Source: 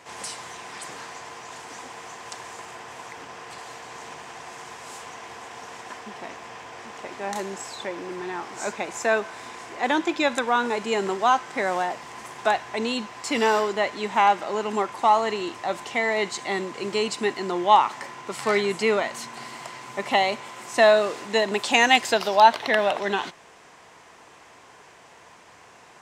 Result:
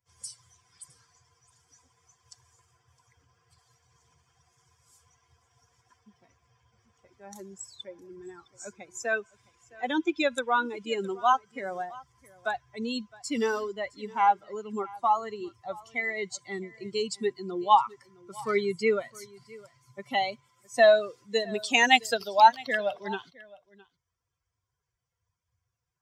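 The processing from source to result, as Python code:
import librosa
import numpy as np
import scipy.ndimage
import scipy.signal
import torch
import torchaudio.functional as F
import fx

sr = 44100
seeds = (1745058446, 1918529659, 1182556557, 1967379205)

y = fx.bin_expand(x, sr, power=2.0)
y = fx.peak_eq(y, sr, hz=2800.0, db=9.0, octaves=0.29, at=(9.03, 11.3))
y = y + 10.0 ** (-22.0 / 20.0) * np.pad(y, (int(662 * sr / 1000.0), 0))[:len(y)]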